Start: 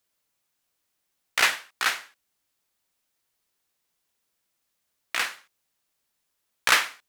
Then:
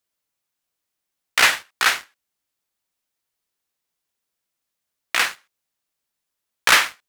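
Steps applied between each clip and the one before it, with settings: sample leveller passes 2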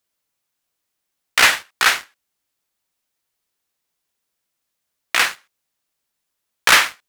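soft clip -5.5 dBFS, distortion -23 dB; gain +3.5 dB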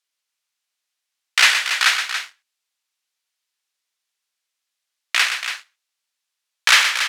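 band-pass 3700 Hz, Q 0.57; loudspeakers at several distances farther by 42 m -8 dB, 97 m -9 dB; gain +1 dB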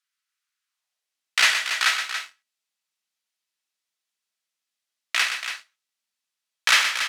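high-pass sweep 1400 Hz -> 190 Hz, 0.66–1.3; resonator 650 Hz, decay 0.21 s, harmonics all, mix 60%; gain +2.5 dB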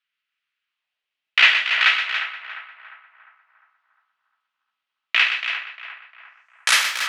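low-pass sweep 2800 Hz -> 15000 Hz, 5.98–6.92; narrowing echo 0.352 s, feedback 50%, band-pass 1000 Hz, level -8.5 dB

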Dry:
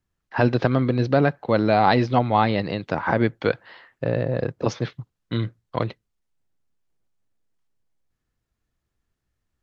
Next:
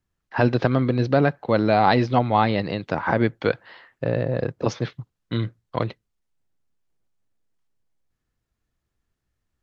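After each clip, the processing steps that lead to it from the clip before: nothing audible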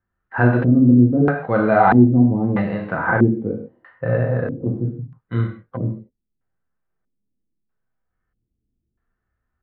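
non-linear reverb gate 0.19 s falling, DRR 0.5 dB; harmonic-percussive split harmonic +8 dB; LFO low-pass square 0.78 Hz 290–1500 Hz; gain -7.5 dB

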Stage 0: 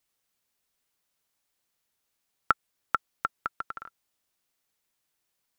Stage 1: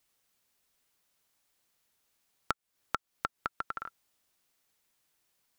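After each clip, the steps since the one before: compressor 5:1, threshold -34 dBFS, peak gain reduction 15.5 dB; gain +3.5 dB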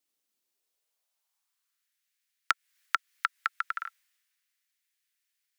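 high-pass sweep 290 Hz -> 1800 Hz, 0.38–1.96; three-band expander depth 40%; gain +4 dB

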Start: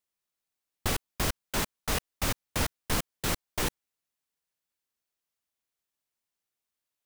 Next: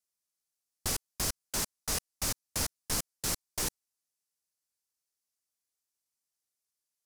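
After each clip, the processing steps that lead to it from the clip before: band shelf 7500 Hz +10 dB; gain -7 dB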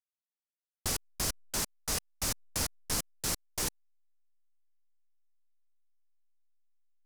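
backlash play -46.5 dBFS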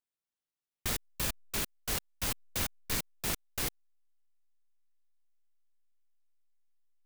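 noise-modulated delay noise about 1700 Hz, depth 0.29 ms

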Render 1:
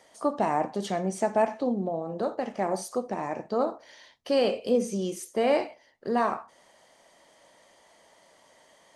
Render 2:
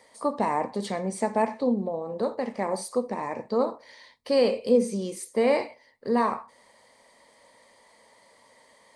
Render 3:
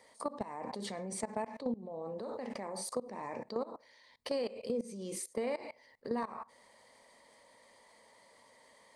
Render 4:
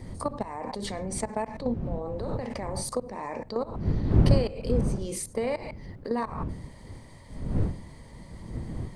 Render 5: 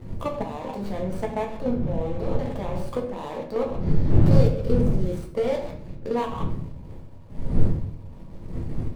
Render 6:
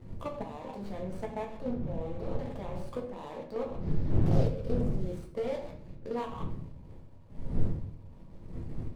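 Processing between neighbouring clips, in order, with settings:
ripple EQ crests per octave 0.95, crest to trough 8 dB
level quantiser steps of 23 dB; limiter -24 dBFS, peak gain reduction 11.5 dB; compressor 2.5:1, threshold -43 dBFS, peak gain reduction 10.5 dB; gain +6.5 dB
wind noise 150 Hz -37 dBFS; gain +6.5 dB
median filter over 25 samples; sample leveller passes 1; shoebox room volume 70 m³, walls mixed, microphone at 0.7 m; gain -2.5 dB
Doppler distortion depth 0.61 ms; gain -9 dB

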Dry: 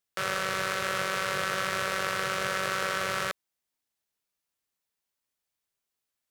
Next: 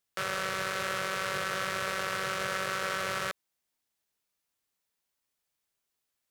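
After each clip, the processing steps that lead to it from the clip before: limiter -19.5 dBFS, peak gain reduction 7 dB; gain +2 dB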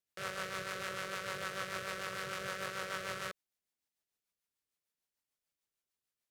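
rotary speaker horn 6.7 Hz; gain -5 dB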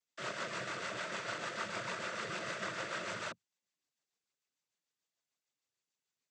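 noise vocoder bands 16; gain +1 dB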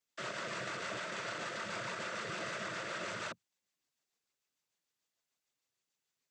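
limiter -33.5 dBFS, peak gain reduction 7 dB; gain +2.5 dB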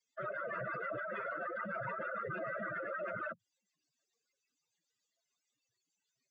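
spectral contrast raised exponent 4; gain +2 dB

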